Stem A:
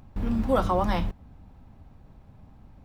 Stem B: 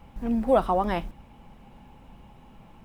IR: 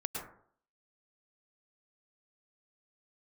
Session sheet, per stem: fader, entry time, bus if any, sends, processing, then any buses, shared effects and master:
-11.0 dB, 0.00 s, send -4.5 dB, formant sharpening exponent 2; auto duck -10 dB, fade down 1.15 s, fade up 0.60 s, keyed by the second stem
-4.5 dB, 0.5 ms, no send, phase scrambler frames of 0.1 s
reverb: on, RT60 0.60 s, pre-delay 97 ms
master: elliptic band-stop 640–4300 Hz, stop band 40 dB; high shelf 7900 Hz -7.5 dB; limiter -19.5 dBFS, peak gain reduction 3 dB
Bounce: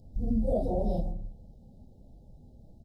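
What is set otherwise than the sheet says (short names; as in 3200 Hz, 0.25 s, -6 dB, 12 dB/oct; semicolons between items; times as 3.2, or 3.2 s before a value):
stem A -11.0 dB -> -5.0 dB; stem B: polarity flipped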